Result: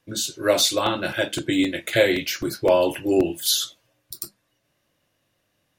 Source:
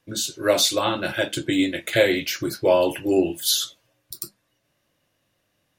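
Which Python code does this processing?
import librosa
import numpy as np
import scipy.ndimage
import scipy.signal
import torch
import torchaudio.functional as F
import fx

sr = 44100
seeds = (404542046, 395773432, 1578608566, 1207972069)

y = fx.buffer_crackle(x, sr, first_s=0.6, period_s=0.26, block=128, kind='repeat')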